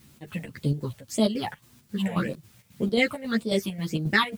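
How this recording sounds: phasing stages 6, 1.8 Hz, lowest notch 310–2000 Hz; a quantiser's noise floor 10-bit, dither triangular; chopped level 3.7 Hz, depth 60%, duty 65%; a shimmering, thickened sound

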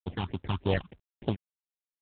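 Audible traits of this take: aliases and images of a low sample rate 1.3 kHz, jitter 20%; phasing stages 6, 3.3 Hz, lowest notch 470–1900 Hz; a quantiser's noise floor 12-bit, dither none; µ-law

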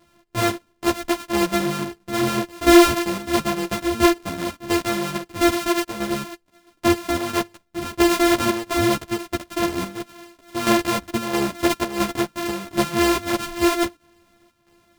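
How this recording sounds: a buzz of ramps at a fixed pitch in blocks of 128 samples; chopped level 1.5 Hz, depth 60%, duty 75%; a shimmering, thickened sound

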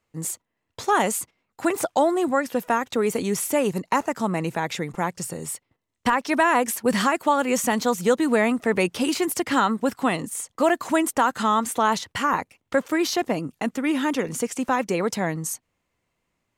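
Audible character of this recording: noise floor -78 dBFS; spectral tilt -4.0 dB/octave

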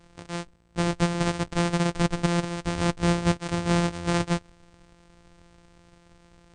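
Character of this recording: a buzz of ramps at a fixed pitch in blocks of 256 samples; MP2

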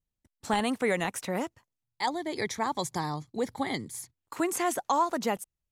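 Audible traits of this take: noise floor -87 dBFS; spectral tilt -4.0 dB/octave

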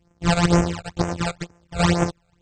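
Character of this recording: a buzz of ramps at a fixed pitch in blocks of 256 samples; phasing stages 12, 2.1 Hz, lowest notch 300–4100 Hz; AAC

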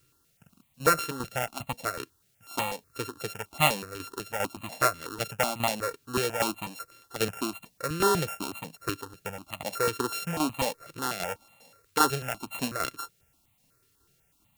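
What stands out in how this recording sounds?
a buzz of ramps at a fixed pitch in blocks of 32 samples; tremolo saw down 2.5 Hz, depth 65%; a quantiser's noise floor 12-bit, dither triangular; notches that jump at a steady rate 8.1 Hz 200–1500 Hz

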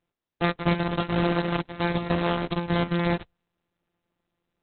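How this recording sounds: a buzz of ramps at a fixed pitch in blocks of 256 samples; Opus

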